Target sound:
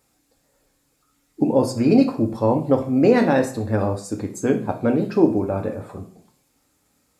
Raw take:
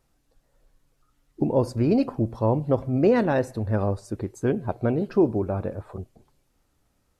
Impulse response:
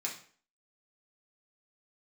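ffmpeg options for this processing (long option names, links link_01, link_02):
-filter_complex "[0:a]highpass=55,asplit=2[link_01][link_02];[link_02]equalizer=frequency=230:width_type=o:width=2.6:gain=3.5[link_03];[1:a]atrim=start_sample=2205,highshelf=frequency=4000:gain=11[link_04];[link_03][link_04]afir=irnorm=-1:irlink=0,volume=-2dB[link_05];[link_01][link_05]amix=inputs=2:normalize=0"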